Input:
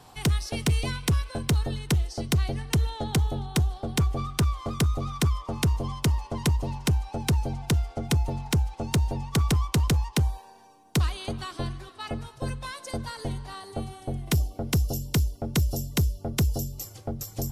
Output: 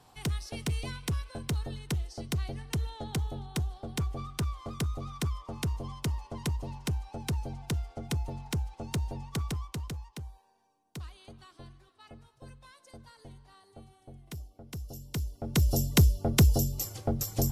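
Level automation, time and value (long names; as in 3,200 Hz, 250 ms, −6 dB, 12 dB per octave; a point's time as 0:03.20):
0:09.26 −8 dB
0:10.17 −18 dB
0:14.66 −18 dB
0:15.37 −7 dB
0:15.77 +3 dB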